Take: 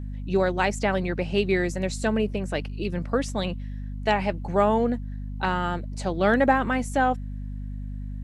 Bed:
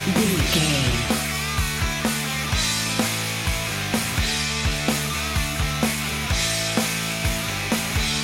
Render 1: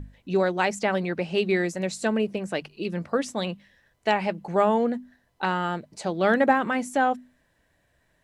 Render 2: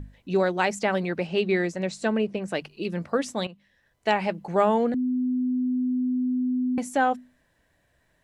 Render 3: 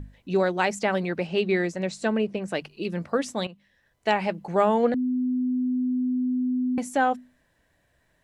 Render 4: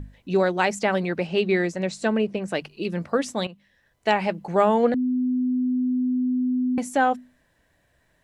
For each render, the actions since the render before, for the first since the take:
notches 50/100/150/200/250 Hz
1.27–2.48 air absorption 62 m; 3.47–4.12 fade in, from -14.5 dB; 4.94–6.78 bleep 252 Hz -22 dBFS
4.84–5.08 spectral gain 470–5500 Hz +6 dB
gain +2 dB

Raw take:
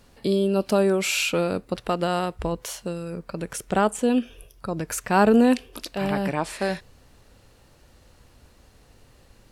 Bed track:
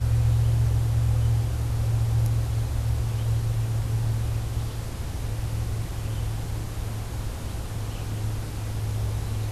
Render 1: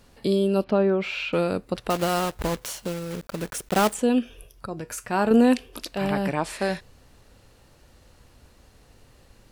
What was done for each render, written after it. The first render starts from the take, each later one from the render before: 0.64–1.33 air absorption 330 m; 1.9–3.96 block floating point 3-bit; 4.66–5.31 resonator 120 Hz, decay 0.2 s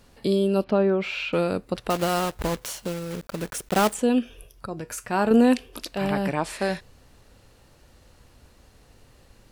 nothing audible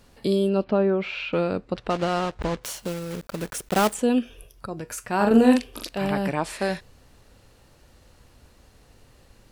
0.49–2.64 air absorption 110 m; 5.16–5.89 doubler 44 ms -4 dB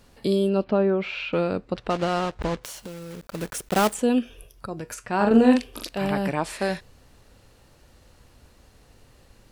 2.64–3.35 compressor 3:1, threshold -35 dBFS; 4.94–5.59 air absorption 54 m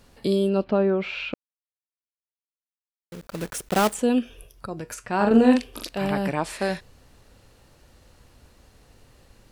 1.34–3.12 mute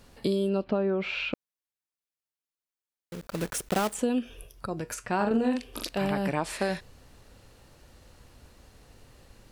compressor 5:1, threshold -23 dBFS, peak gain reduction 11.5 dB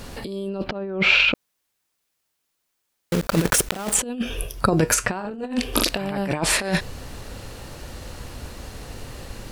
negative-ratio compressor -33 dBFS, ratio -0.5; maximiser +12 dB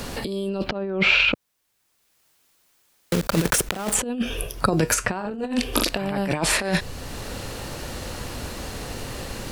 three-band squash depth 40%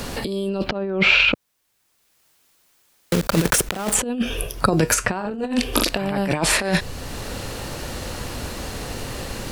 gain +2.5 dB; limiter -2 dBFS, peak gain reduction 2.5 dB

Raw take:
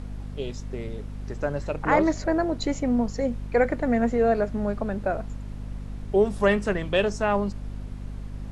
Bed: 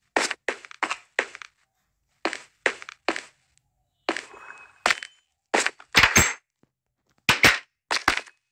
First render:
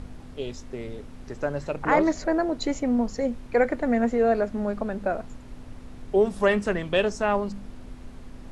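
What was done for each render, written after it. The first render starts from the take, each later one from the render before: de-hum 50 Hz, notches 4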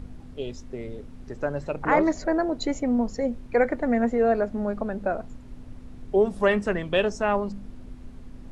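denoiser 6 dB, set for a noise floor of -43 dBFS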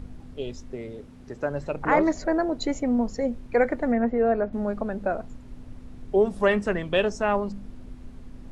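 0.76–1.52 HPF 89 Hz 6 dB/oct; 3.92–4.53 air absorption 300 m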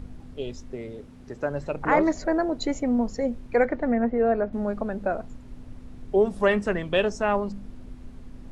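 3.65–4.2 air absorption 110 m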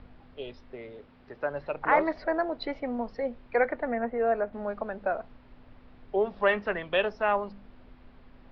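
steep low-pass 5200 Hz 72 dB/oct; three-band isolator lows -12 dB, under 500 Hz, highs -16 dB, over 4000 Hz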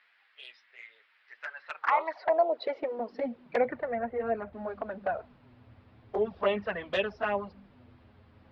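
high-pass sweep 1900 Hz -> 85 Hz, 1.51–4.01; envelope flanger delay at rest 10.5 ms, full sweep at -19.5 dBFS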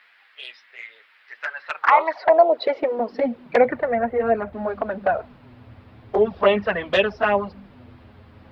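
gain +10.5 dB

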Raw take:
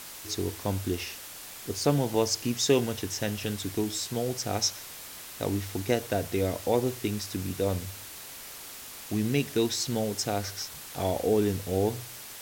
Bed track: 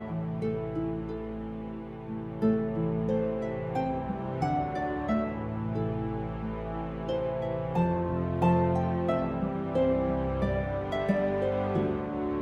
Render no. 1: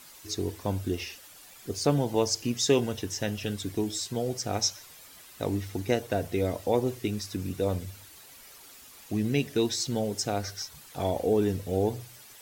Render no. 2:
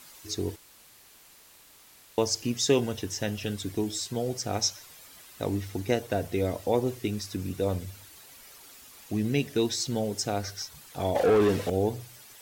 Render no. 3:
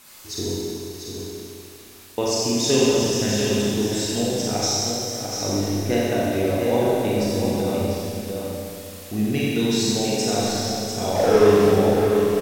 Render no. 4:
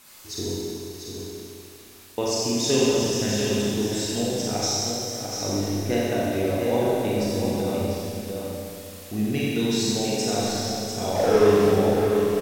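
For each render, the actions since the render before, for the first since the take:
denoiser 10 dB, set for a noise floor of -44 dBFS
0.56–2.18 room tone; 11.15–11.7 overdrive pedal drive 23 dB, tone 2300 Hz, clips at -14 dBFS
echo 0.695 s -6.5 dB; Schroeder reverb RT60 2.5 s, combs from 30 ms, DRR -6.5 dB
gain -2.5 dB

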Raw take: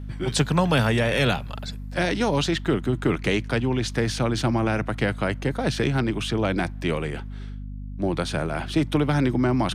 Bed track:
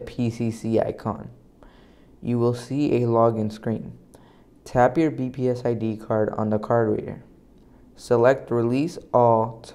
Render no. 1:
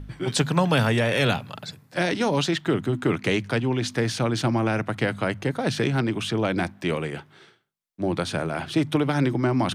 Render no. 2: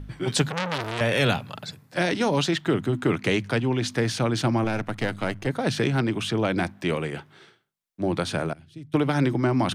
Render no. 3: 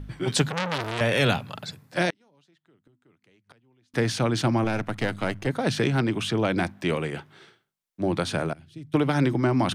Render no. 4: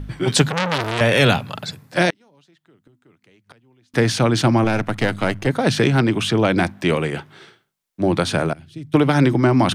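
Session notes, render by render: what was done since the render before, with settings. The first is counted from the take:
de-hum 50 Hz, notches 5
0.48–1.01 core saturation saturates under 3100 Hz; 4.64–5.47 half-wave gain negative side -7 dB; 8.53–8.94 passive tone stack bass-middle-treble 10-0-1
2.1–3.94 flipped gate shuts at -22 dBFS, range -39 dB
gain +7 dB; limiter -2 dBFS, peak gain reduction 0.5 dB

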